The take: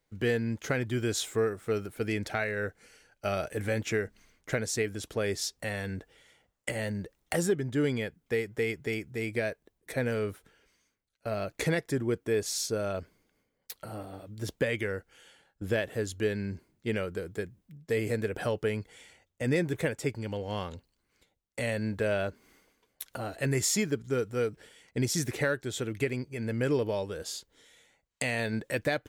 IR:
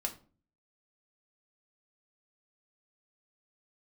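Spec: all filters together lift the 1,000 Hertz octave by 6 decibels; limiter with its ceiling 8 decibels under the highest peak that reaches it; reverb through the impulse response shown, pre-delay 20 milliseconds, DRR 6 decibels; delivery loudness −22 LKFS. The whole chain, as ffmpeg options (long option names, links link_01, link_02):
-filter_complex "[0:a]equalizer=frequency=1000:width_type=o:gain=9,alimiter=limit=-19.5dB:level=0:latency=1,asplit=2[link_01][link_02];[1:a]atrim=start_sample=2205,adelay=20[link_03];[link_02][link_03]afir=irnorm=-1:irlink=0,volume=-7.5dB[link_04];[link_01][link_04]amix=inputs=2:normalize=0,volume=9dB"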